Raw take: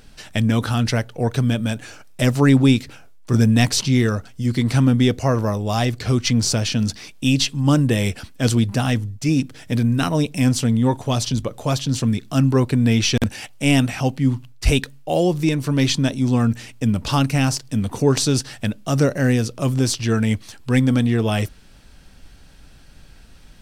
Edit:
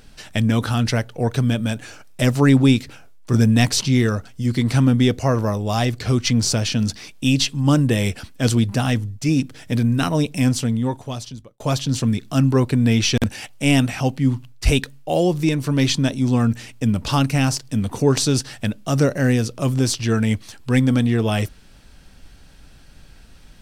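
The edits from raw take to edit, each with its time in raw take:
10.38–11.60 s: fade out

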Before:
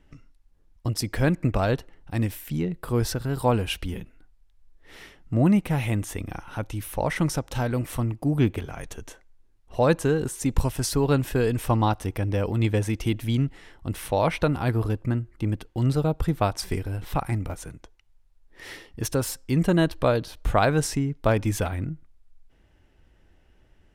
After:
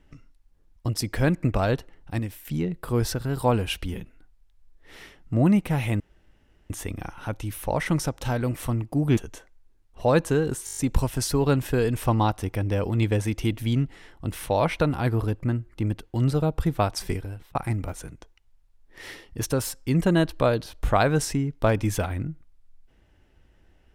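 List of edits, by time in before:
2.19–2.45 s: gain -5.5 dB
6.00 s: insert room tone 0.70 s
8.47–8.91 s: delete
10.39 s: stutter 0.02 s, 7 plays
16.73–17.17 s: fade out

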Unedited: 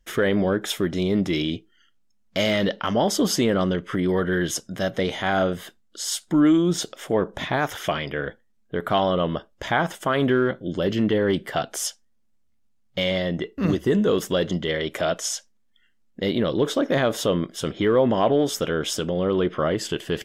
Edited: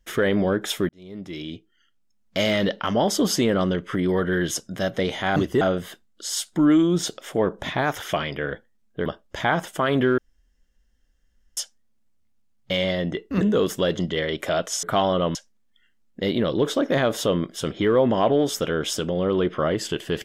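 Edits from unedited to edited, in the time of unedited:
0.89–2.41 s: fade in
8.81–9.33 s: move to 15.35 s
10.45–11.84 s: room tone
13.68–13.93 s: move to 5.36 s

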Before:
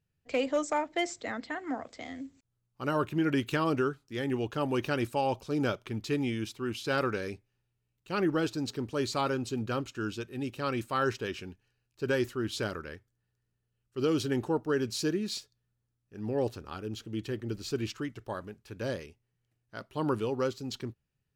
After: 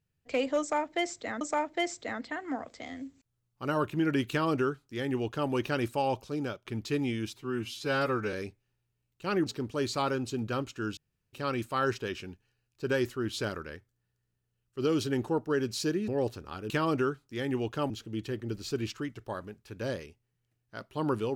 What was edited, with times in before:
0.60–1.41 s: loop, 2 plays
3.49–4.69 s: copy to 16.90 s
5.36–5.84 s: fade out, to -12 dB
6.53–7.19 s: stretch 1.5×
8.32–8.65 s: delete
10.16–10.52 s: room tone
15.27–16.28 s: delete

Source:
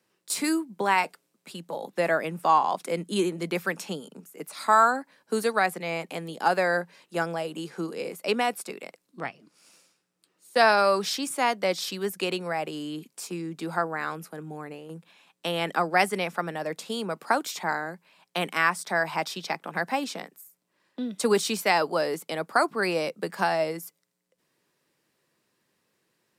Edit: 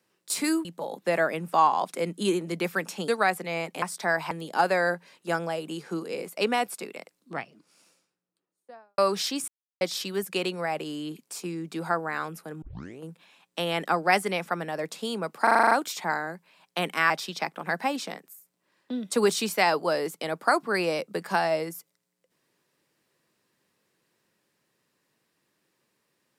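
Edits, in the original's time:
0.65–1.56 s: delete
3.99–5.44 s: delete
9.22–10.85 s: studio fade out
11.35–11.68 s: mute
14.49 s: tape start 0.39 s
17.30 s: stutter 0.04 s, 8 plays
18.69–19.18 s: move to 6.18 s

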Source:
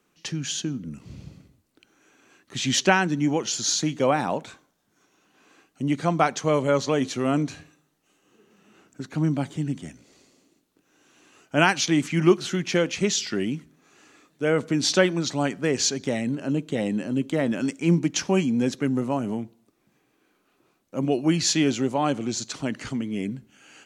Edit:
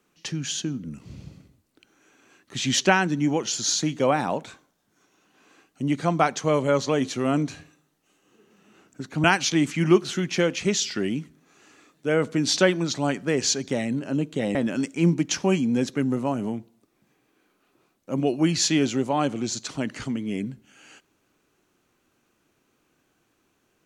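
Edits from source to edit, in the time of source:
9.24–11.60 s: delete
16.91–17.40 s: delete

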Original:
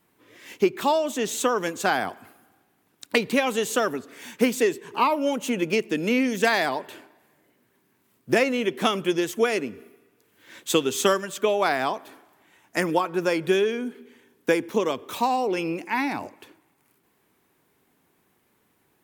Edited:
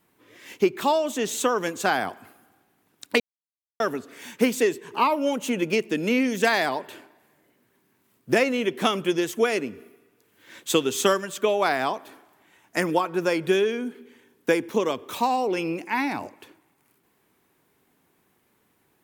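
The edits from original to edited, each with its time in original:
3.20–3.80 s: mute

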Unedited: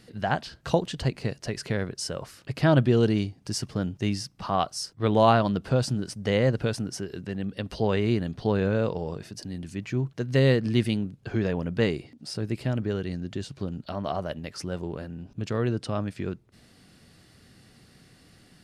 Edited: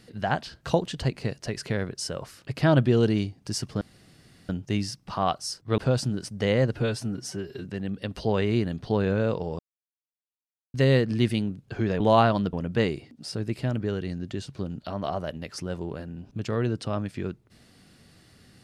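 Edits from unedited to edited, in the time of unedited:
3.81 s: insert room tone 0.68 s
5.10–5.63 s: move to 11.55 s
6.60–7.20 s: stretch 1.5×
9.14–10.29 s: mute

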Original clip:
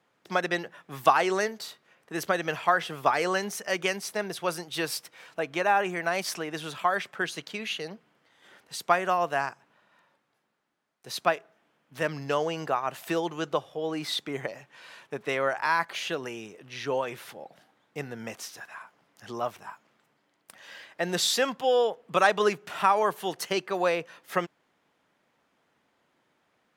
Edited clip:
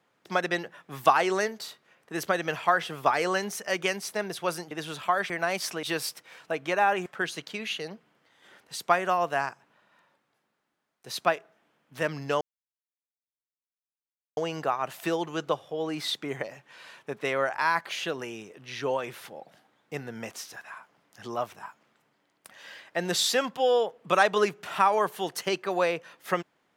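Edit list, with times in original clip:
4.71–5.94 s: swap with 6.47–7.06 s
12.41 s: insert silence 1.96 s

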